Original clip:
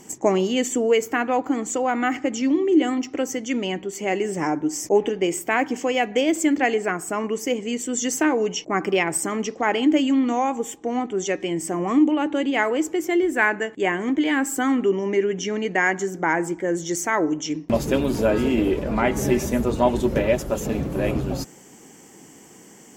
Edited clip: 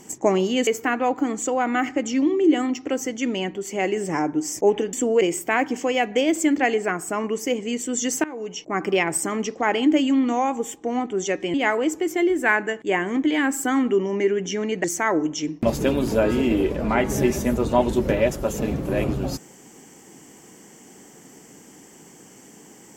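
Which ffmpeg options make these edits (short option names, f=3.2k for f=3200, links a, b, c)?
-filter_complex "[0:a]asplit=7[a][b][c][d][e][f][g];[a]atrim=end=0.672[h];[b]atrim=start=0.948:end=5.212[i];[c]atrim=start=0.668:end=0.952[j];[d]atrim=start=5.208:end=8.24,asetpts=PTS-STARTPTS,afade=t=out:st=3.028:d=0.004:c=hsin:silence=0.105925[k];[e]atrim=start=8.24:end=11.542,asetpts=PTS-STARTPTS,afade=t=in:d=0.68:silence=0.105925[l];[f]atrim=start=12.468:end=15.772[m];[g]atrim=start=16.908[n];[h][i]acrossfade=d=0.004:c1=hsin:c2=hsin[o];[o][j]acrossfade=d=0.004:c1=hsin:c2=hsin[p];[k][l]concat=n=2:v=0:a=1[q];[p][q]acrossfade=d=0.004:c1=hsin:c2=hsin[r];[r][m]acrossfade=d=0.004:c1=hsin:c2=hsin[s];[s][n]acrossfade=d=0.004:c1=hsin:c2=hsin"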